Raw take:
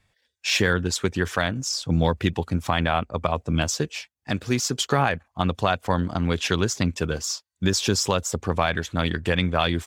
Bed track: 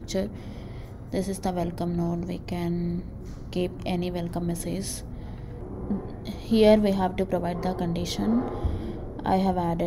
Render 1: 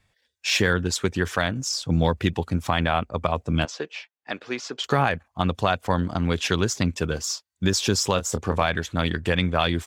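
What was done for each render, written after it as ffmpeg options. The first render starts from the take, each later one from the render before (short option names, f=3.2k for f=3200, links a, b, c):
-filter_complex "[0:a]asettb=1/sr,asplit=3[a][b][c];[a]atrim=end=3.654[d];[b]atrim=start=3.65:end=4.84,asetpts=PTS-STARTPTS,afade=t=in:d=0.004:c=qsin,afade=t=out:st=1.186:d=0.004:c=qsin,highpass=420,lowpass=3.3k[e];[c]atrim=start=4.836[f];[d][e]acrossfade=d=0.004:c1=hsin:c2=qsin[g];[g][f]acrossfade=d=0.004:c1=qsin:c2=hsin,asettb=1/sr,asplit=3[h][i][j];[h]atrim=end=8.144[k];[i]atrim=start=8.14:end=8.63,asetpts=PTS-STARTPTS,afade=t=in:d=0.004:c=qsin,afade=t=out:st=0.486:d=0.004:c=qsin,asplit=2[l][m];[m]adelay=26,volume=-9dB[n];[l][n]amix=inputs=2:normalize=0,atrim=end_sample=21609[o];[j]atrim=start=8.626[p];[k][o]acrossfade=d=0.004:c1=hsin:c2=qsin[q];[q][p]acrossfade=d=0.004:c1=qsin:c2=hsin"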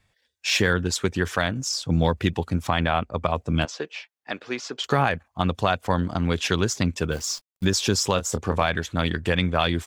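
-filter_complex "[0:a]asettb=1/sr,asplit=3[a][b][c];[a]atrim=end=2.674[d];[b]atrim=start=2.67:end=3.29,asetpts=PTS-STARTPTS,afade=t=in:d=0.004:c=qsin,afade=t=out:st=0.616:d=0.004:c=qsin,highshelf=f=9.8k:g=-7.5[e];[c]atrim=start=3.286[f];[d][e]acrossfade=d=0.004:c1=hsin:c2=qsin[g];[g][f]acrossfade=d=0.004:c1=qsin:c2=hsin,asplit=3[h][i][j];[h]afade=t=out:st=7.11:d=0.02[k];[i]acrusher=bits=8:dc=4:mix=0:aa=0.000001,afade=t=in:st=7.11:d=0.02,afade=t=out:st=7.64:d=0.02[l];[j]afade=t=in:st=7.64:d=0.02[m];[k][l][m]amix=inputs=3:normalize=0"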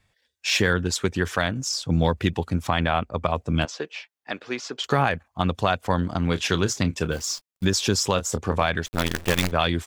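-filter_complex "[0:a]asettb=1/sr,asplit=3[a][b][c];[a]atrim=end=6.244[d];[b]atrim=start=6.24:end=7.17,asetpts=PTS-STARTPTS,afade=t=in:d=0.004:c=qsin,afade=t=out:st=0.926:d=0.004:c=qsin,asplit=2[e][f];[f]adelay=30,volume=-13dB[g];[e][g]amix=inputs=2:normalize=0,atrim=end_sample=41013[h];[c]atrim=start=7.166[i];[d][h]acrossfade=d=0.004:c1=hsin:c2=qsin[j];[j][i]acrossfade=d=0.004:c1=qsin:c2=hsin,asettb=1/sr,asplit=3[k][l][m];[k]atrim=end=8.864[n];[l]atrim=start=8.86:end=9.52,asetpts=PTS-STARTPTS,afade=t=in:d=0.004:c=qsin,afade=t=out:st=0.656:d=0.004:c=qsin,acrusher=bits=4:dc=4:mix=0:aa=0.000001[o];[m]atrim=start=9.516[p];[n][o]acrossfade=d=0.004:c1=hsin:c2=qsin[q];[q][p]acrossfade=d=0.004:c1=qsin:c2=hsin"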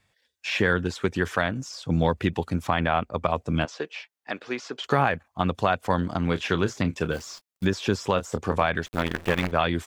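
-filter_complex "[0:a]acrossover=split=2900[a][b];[b]acompressor=threshold=-41dB:ratio=4:attack=1:release=60[c];[a][c]amix=inputs=2:normalize=0,lowshelf=f=76:g=-9.5"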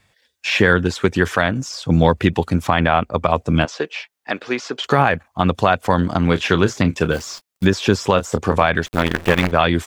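-af "volume=8.5dB,alimiter=limit=-1dB:level=0:latency=1"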